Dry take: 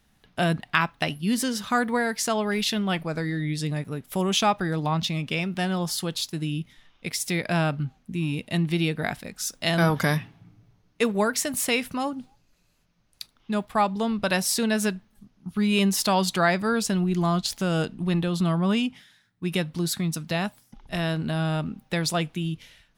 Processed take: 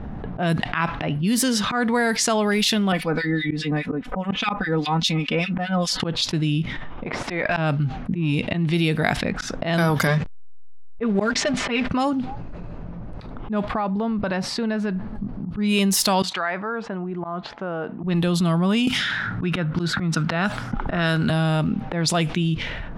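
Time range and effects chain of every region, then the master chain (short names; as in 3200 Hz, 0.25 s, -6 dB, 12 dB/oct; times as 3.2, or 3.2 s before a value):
2.92–6 comb 4 ms, depth 86% + harmonic tremolo 4.9 Hz, depth 100%, crossover 2000 Hz
7.06–7.57 tilt +3 dB/oct + compressor 4:1, threshold -26 dBFS + overdrive pedal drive 14 dB, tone 1200 Hz, clips at -12.5 dBFS
10.07–11.9 comb 5 ms, depth 73% + backlash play -30.5 dBFS + air absorption 100 m
13.68–15.55 bell 4500 Hz +7 dB 0.25 oct + compressor 4:1, threshold -35 dBFS
16.22–18.04 LPF 1600 Hz + differentiator
18.87–21.3 bell 1400 Hz +11.5 dB 0.4 oct + three-band squash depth 100%
whole clip: auto swell 0.152 s; low-pass opened by the level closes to 760 Hz, open at -21.5 dBFS; fast leveller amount 70%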